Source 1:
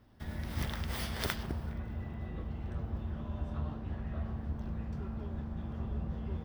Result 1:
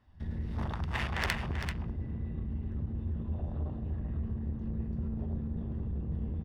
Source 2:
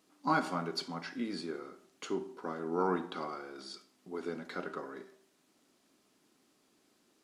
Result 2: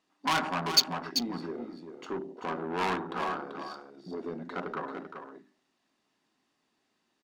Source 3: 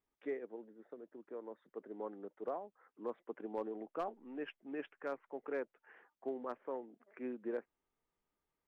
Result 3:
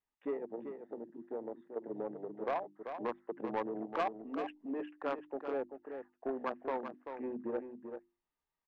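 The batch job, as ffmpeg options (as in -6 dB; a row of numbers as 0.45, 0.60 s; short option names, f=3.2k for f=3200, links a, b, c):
-filter_complex "[0:a]aecho=1:1:1.1:0.31,asplit=2[a][b];[b]acompressor=threshold=-46dB:ratio=8,volume=0dB[c];[a][c]amix=inputs=2:normalize=0,afwtdn=0.0126,asoftclip=type=tanh:threshold=-32dB,crystalizer=i=10:c=0,bandreject=f=50:t=h:w=6,bandreject=f=100:t=h:w=6,bandreject=f=150:t=h:w=6,bandreject=f=200:t=h:w=6,bandreject=f=250:t=h:w=6,bandreject=f=300:t=h:w=6,bandreject=f=350:t=h:w=6,adynamicsmooth=sensitivity=2:basefreq=2.1k,aecho=1:1:388:0.398,volume=3dB"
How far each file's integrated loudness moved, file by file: +3.0, +5.5, +4.5 LU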